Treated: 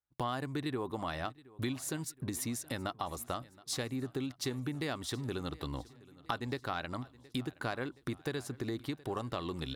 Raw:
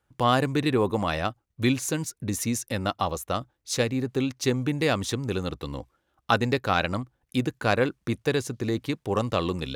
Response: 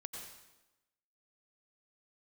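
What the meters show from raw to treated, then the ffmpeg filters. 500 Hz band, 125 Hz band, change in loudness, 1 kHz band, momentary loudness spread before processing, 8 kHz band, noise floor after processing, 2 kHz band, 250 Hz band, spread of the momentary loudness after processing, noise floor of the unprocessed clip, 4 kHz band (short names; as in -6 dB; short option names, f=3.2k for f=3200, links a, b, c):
-13.0 dB, -11.0 dB, -11.5 dB, -11.5 dB, 7 LU, -8.5 dB, -63 dBFS, -12.0 dB, -11.0 dB, 4 LU, -76 dBFS, -9.5 dB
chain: -af "agate=range=-22dB:threshold=-51dB:ratio=16:detection=peak,equalizer=f=100:t=o:w=0.33:g=-7,equalizer=f=200:t=o:w=0.33:g=-7,equalizer=f=500:t=o:w=0.33:g=-8,equalizer=f=2.5k:t=o:w=0.33:g=-6,equalizer=f=6.3k:t=o:w=0.33:g=-7,acompressor=threshold=-35dB:ratio=4,aecho=1:1:721|1442|2163|2884:0.0841|0.0488|0.0283|0.0164"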